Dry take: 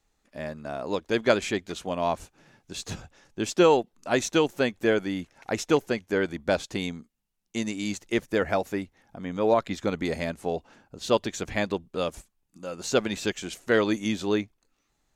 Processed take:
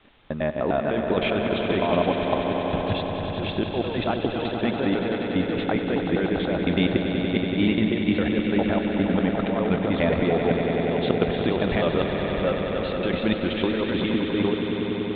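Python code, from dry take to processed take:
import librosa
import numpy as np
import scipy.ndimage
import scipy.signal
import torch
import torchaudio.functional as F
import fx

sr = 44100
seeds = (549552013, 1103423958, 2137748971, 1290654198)

p1 = fx.block_reorder(x, sr, ms=101.0, group=3)
p2 = fx.quant_dither(p1, sr, seeds[0], bits=8, dither='triangular')
p3 = p1 + (p2 * 10.0 ** (-10.0 / 20.0))
p4 = scipy.signal.sosfilt(scipy.signal.butter(16, 3700.0, 'lowpass', fs=sr, output='sos'), p3)
p5 = fx.peak_eq(p4, sr, hz=2300.0, db=-4.0, octaves=2.4)
p6 = fx.over_compress(p5, sr, threshold_db=-28.0, ratio=-1.0)
p7 = p6 + fx.echo_swell(p6, sr, ms=95, loudest=5, wet_db=-9.0, dry=0)
y = p7 * 10.0 ** (4.0 / 20.0)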